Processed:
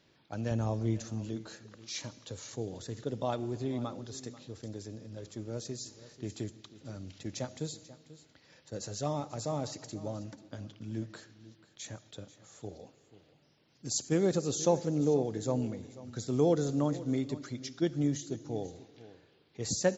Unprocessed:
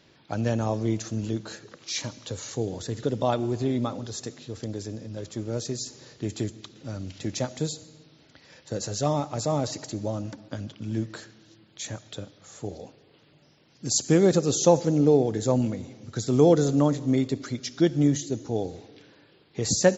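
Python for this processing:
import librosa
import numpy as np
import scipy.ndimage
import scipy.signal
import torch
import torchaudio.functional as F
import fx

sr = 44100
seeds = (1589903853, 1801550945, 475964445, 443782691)

y = fx.low_shelf(x, sr, hz=110.0, db=12.0, at=(0.51, 1.05))
y = y + 10.0 ** (-17.0 / 20.0) * np.pad(y, (int(489 * sr / 1000.0), 0))[:len(y)]
y = fx.attack_slew(y, sr, db_per_s=600.0)
y = y * 10.0 ** (-8.5 / 20.0)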